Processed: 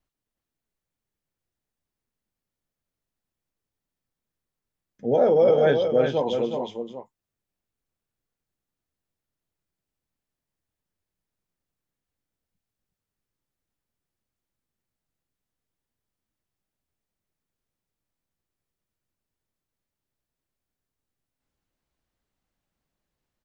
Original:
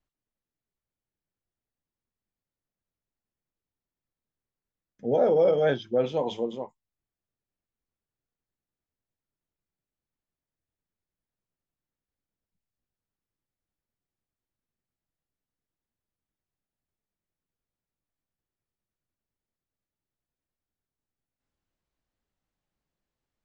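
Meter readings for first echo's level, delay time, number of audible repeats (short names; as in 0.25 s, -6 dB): -6.0 dB, 0.368 s, 1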